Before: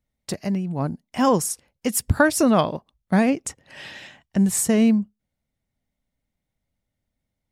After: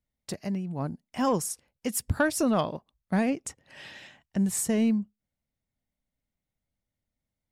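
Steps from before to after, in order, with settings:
soft clipping −6 dBFS, distortion −25 dB
level −6.5 dB

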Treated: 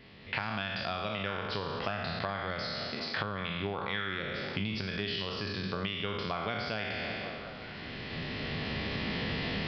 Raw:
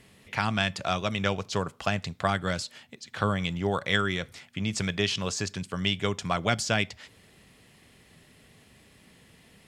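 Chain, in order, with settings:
peak hold with a decay on every bin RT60 1.15 s
camcorder AGC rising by 12 dB per second
mains-hum notches 60/120/180 Hz
on a send: echo through a band-pass that steps 187 ms, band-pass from 170 Hz, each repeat 0.7 octaves, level −11.5 dB
on the sum: downward compressor 6 to 1, threshold −31 dBFS, peak gain reduction 13.5 dB
downsampling to 11,025 Hz

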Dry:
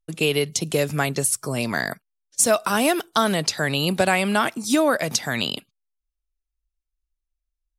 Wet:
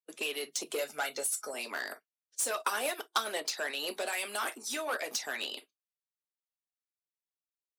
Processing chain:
0:00.78–0:01.54: comb filter 1.4 ms, depth 67%
reverb whose tail is shaped and stops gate 80 ms falling, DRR 5.5 dB
harmonic and percussive parts rebalanced harmonic −12 dB
0:04.12–0:04.58: parametric band 12,000 Hz +7.5 dB 1.6 octaves
soft clipping −20 dBFS, distortion −10 dB
0:02.60–0:03.45: transient designer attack +7 dB, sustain −5 dB
high-pass filter 320 Hz 24 dB per octave
level −7 dB

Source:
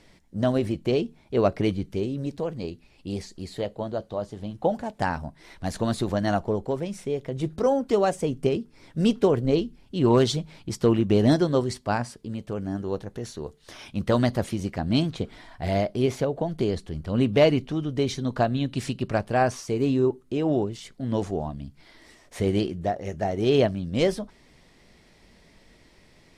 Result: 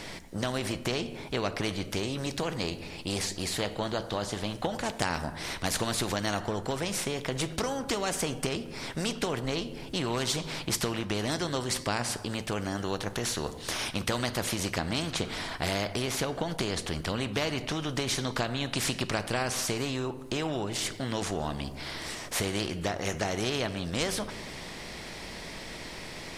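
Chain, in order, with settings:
downward compressor, threshold −27 dBFS, peak gain reduction 13 dB
on a send at −16.5 dB: convolution reverb RT60 1.0 s, pre-delay 6 ms
on the sum: every bin compressed towards the loudest bin 2 to 1
level +7 dB

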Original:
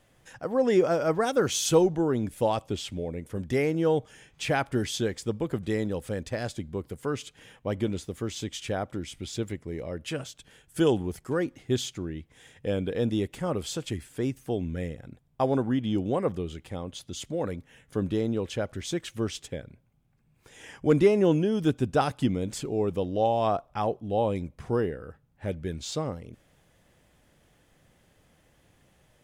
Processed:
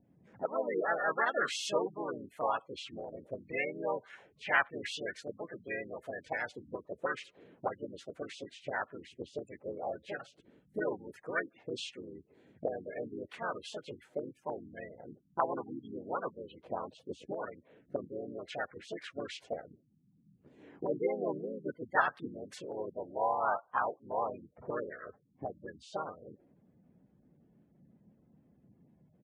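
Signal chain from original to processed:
pitch-shifted copies added −3 semitones −6 dB, +3 semitones −11 dB, +4 semitones −3 dB
gate on every frequency bin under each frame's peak −20 dB strong
envelope filter 200–1,700 Hz, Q 2.2, up, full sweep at −25.5 dBFS
level +3.5 dB

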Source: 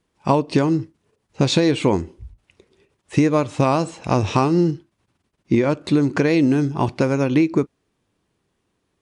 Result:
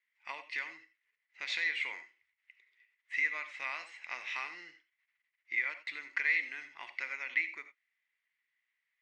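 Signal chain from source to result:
four-pole ladder band-pass 2,100 Hz, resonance 85%
reverb whose tail is shaped and stops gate 110 ms rising, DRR 10.5 dB

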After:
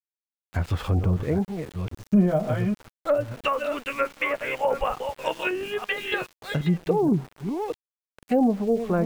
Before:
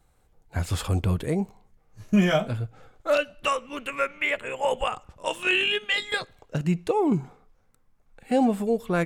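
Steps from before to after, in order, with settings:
delay that plays each chunk backwards 487 ms, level −8 dB
treble cut that deepens with the level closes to 690 Hz, closed at −18.5 dBFS
centre clipping without the shift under −41.5 dBFS
level +1.5 dB

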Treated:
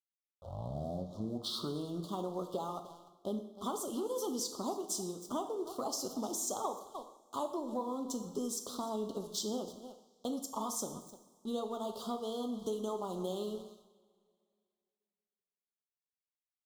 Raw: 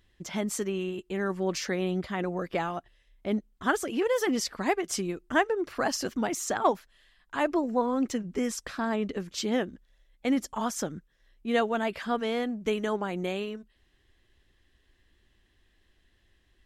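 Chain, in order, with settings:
turntable start at the beginning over 2.12 s
high-pass filter 100 Hz 12 dB per octave
low-shelf EQ 170 Hz −8.5 dB
single-tap delay 301 ms −18 dB
dead-zone distortion −51.5 dBFS
elliptic band-stop filter 1,200–3,400 Hz, stop band 40 dB
high-shelf EQ 6,600 Hz +8 dB
downward compressor, threshold −35 dBFS, peak gain reduction 14.5 dB
coupled-rooms reverb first 0.73 s, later 2.4 s, DRR 5.5 dB

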